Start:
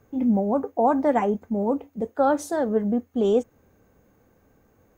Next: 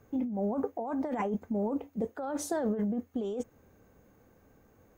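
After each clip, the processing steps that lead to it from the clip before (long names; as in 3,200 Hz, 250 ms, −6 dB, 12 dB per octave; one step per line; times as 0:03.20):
compressor whose output falls as the input rises −26 dBFS, ratio −1
level −5.5 dB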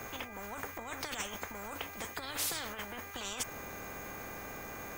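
tilt shelving filter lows −3 dB
hum with harmonics 400 Hz, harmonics 6, −68 dBFS 0 dB per octave
every bin compressed towards the loudest bin 10 to 1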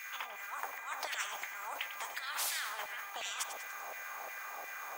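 auto-filter high-pass saw down 2.8 Hz 640–2,200 Hz
feedback echo with a swinging delay time 97 ms, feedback 54%, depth 52 cents, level −10.5 dB
level −2 dB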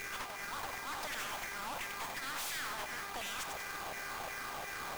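each half-wave held at its own peak
tube saturation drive 42 dB, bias 0.45
in parallel at −7.5 dB: bit reduction 7 bits
on the sum: level +1 dB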